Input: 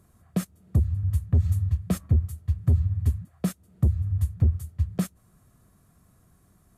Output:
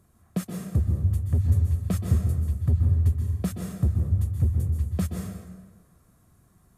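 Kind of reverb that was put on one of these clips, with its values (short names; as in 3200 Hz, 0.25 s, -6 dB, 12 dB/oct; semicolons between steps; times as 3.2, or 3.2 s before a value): plate-style reverb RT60 1.4 s, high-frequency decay 0.7×, pre-delay 0.115 s, DRR 1.5 dB; gain -2 dB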